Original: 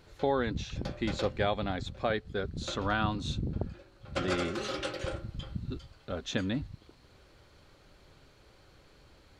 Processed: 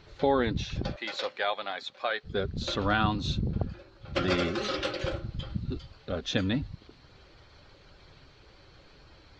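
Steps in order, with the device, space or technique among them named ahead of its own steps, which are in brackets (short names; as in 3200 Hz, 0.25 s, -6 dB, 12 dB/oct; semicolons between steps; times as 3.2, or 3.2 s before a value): 0.96–2.24 HPF 730 Hz 12 dB/oct; clip after many re-uploads (LPF 5300 Hz 24 dB/oct; bin magnitudes rounded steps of 15 dB); high shelf 6800 Hz +9 dB; gain +4 dB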